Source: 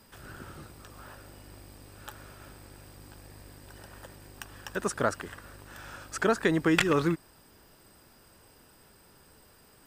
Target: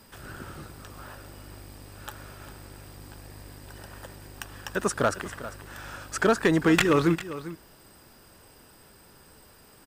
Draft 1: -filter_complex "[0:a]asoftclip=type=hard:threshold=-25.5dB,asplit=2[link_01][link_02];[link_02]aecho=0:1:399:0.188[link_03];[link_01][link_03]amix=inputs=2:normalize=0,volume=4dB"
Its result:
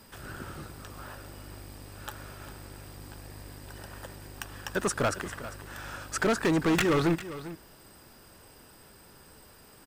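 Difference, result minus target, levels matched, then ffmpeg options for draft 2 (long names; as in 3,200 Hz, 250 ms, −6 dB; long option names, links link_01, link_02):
hard clipping: distortion +10 dB
-filter_complex "[0:a]asoftclip=type=hard:threshold=-17.5dB,asplit=2[link_01][link_02];[link_02]aecho=0:1:399:0.188[link_03];[link_01][link_03]amix=inputs=2:normalize=0,volume=4dB"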